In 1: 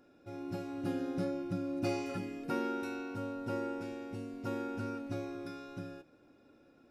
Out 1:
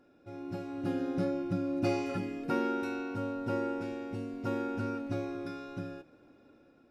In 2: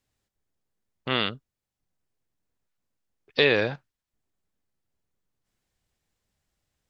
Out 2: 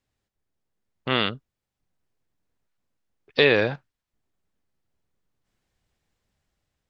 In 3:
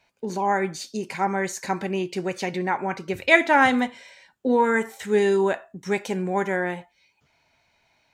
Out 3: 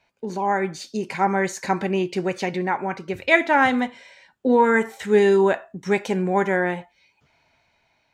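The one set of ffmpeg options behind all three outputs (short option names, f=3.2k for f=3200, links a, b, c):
-af "highshelf=f=6k:g=-8,dynaudnorm=f=340:g=5:m=4dB"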